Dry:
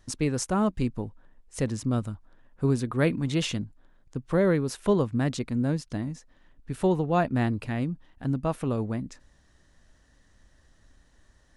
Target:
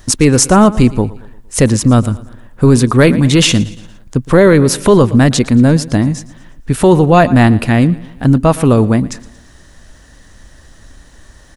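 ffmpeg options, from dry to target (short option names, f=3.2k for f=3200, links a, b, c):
-af "highshelf=f=9.1k:g=7.5,aecho=1:1:115|230|345|460:0.1|0.047|0.0221|0.0104,apsyclip=20.5dB,volume=-1.5dB"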